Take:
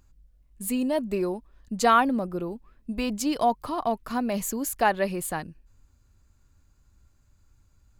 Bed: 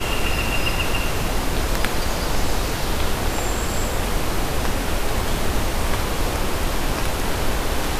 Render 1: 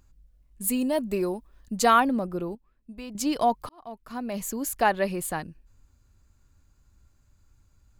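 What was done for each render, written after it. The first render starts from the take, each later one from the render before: 0.64–2.00 s: treble shelf 7.5 kHz +7.5 dB; 2.55–3.15 s: gain -11 dB; 3.69–4.73 s: fade in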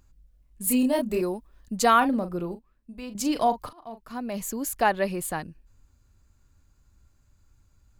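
0.64–1.21 s: doubling 28 ms -2.5 dB; 1.97–4.01 s: doubling 40 ms -11 dB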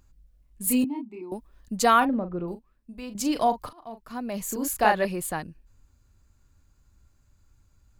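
0.84–1.32 s: vowel filter u; 2.05–2.48 s: distance through air 450 m; 4.46–5.05 s: doubling 33 ms -2.5 dB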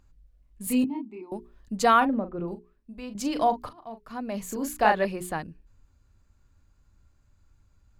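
treble shelf 6.7 kHz -10.5 dB; hum notches 60/120/180/240/300/360/420 Hz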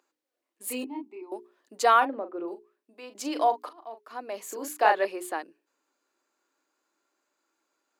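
Chebyshev high-pass 320 Hz, order 4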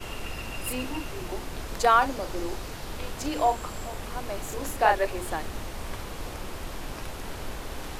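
add bed -14 dB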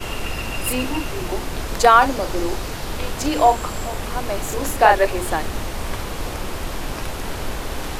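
trim +9 dB; peak limiter -1 dBFS, peak gain reduction 2 dB

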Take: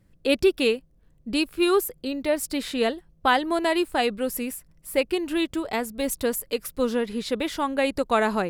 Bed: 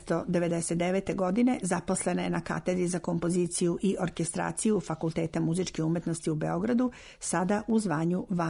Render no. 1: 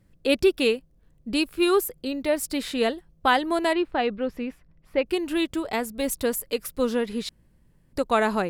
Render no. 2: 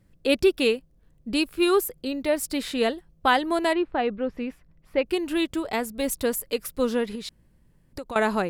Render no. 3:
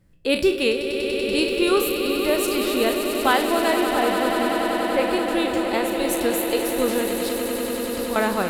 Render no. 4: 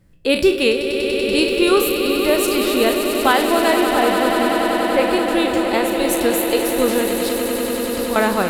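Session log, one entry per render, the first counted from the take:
3.73–5.06 s: distance through air 270 m; 7.29–7.93 s: room tone
3.74–4.38 s: low-pass 2.3 kHz 6 dB/octave; 7.15–8.16 s: compression, threshold -31 dBFS
spectral sustain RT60 0.34 s; echo with a slow build-up 96 ms, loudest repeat 8, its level -10.5 dB
trim +4.5 dB; peak limiter -3 dBFS, peak gain reduction 2.5 dB

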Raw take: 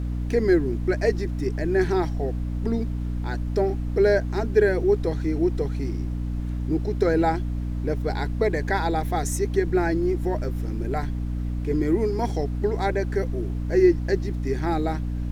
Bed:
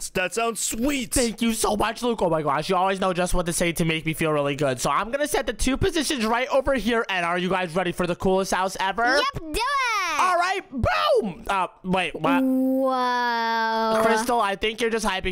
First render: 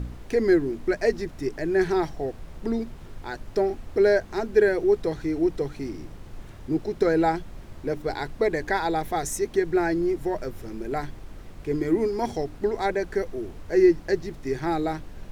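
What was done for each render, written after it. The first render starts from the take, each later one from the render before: de-hum 60 Hz, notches 5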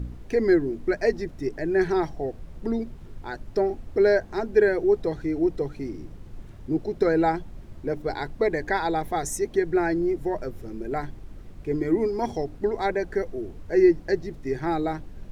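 noise reduction 7 dB, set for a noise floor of -43 dBFS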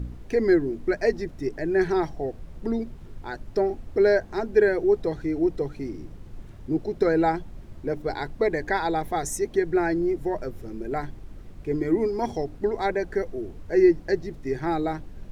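no audible change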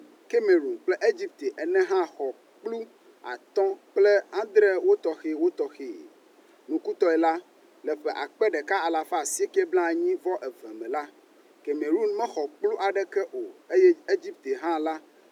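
steep high-pass 310 Hz 36 dB/octave; dynamic bell 6.3 kHz, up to +4 dB, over -56 dBFS, Q 2.5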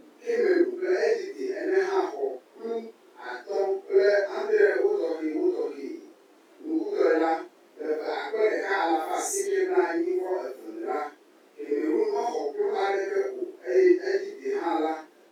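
phase randomisation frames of 200 ms; overload inside the chain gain 10 dB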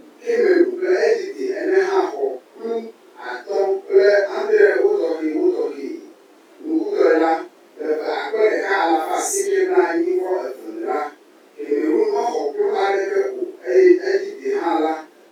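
trim +7.5 dB

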